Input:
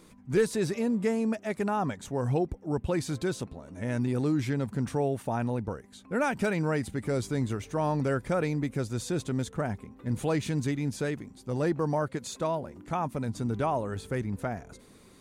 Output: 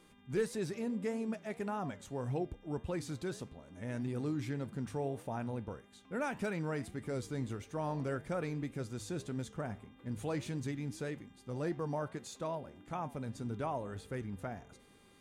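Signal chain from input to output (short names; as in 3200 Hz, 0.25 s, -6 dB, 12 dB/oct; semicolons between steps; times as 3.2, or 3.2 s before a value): flange 1.7 Hz, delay 9.7 ms, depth 6.3 ms, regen -83%; buzz 400 Hz, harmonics 9, -65 dBFS -1 dB/oct; gain -4.5 dB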